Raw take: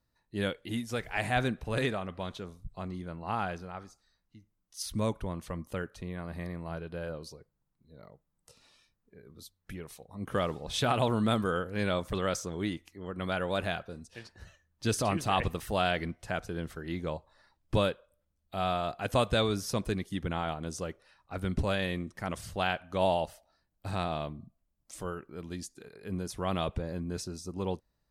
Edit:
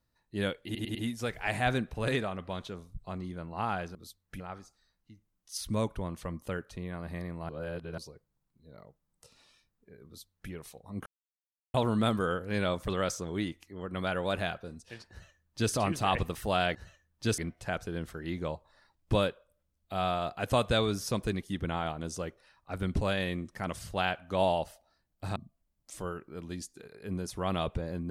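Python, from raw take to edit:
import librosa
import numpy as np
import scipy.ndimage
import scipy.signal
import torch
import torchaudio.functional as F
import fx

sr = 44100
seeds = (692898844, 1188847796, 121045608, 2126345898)

y = fx.edit(x, sr, fx.stutter(start_s=0.65, slice_s=0.1, count=4),
    fx.reverse_span(start_s=6.74, length_s=0.49),
    fx.duplicate(start_s=9.31, length_s=0.45, to_s=3.65),
    fx.silence(start_s=10.31, length_s=0.68),
    fx.duplicate(start_s=14.35, length_s=0.63, to_s=16.0),
    fx.cut(start_s=23.98, length_s=0.39), tone=tone)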